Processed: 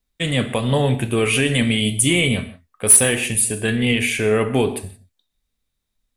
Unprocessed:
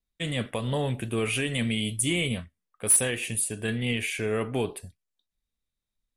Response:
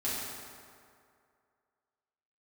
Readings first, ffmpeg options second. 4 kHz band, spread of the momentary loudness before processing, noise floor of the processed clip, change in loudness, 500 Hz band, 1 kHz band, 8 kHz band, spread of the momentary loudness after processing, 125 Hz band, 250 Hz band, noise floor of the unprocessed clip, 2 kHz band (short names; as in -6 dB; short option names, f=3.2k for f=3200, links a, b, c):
+9.5 dB, 10 LU, -77 dBFS, +9.5 dB, +10.0 dB, +9.5 dB, +9.5 dB, 11 LU, +9.0 dB, +10.0 dB, under -85 dBFS, +9.5 dB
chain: -filter_complex "[0:a]asplit=2[a][b];[1:a]atrim=start_sample=2205,afade=t=out:st=0.23:d=0.01,atrim=end_sample=10584[c];[b][c]afir=irnorm=-1:irlink=0,volume=-13.5dB[d];[a][d]amix=inputs=2:normalize=0,volume=8dB"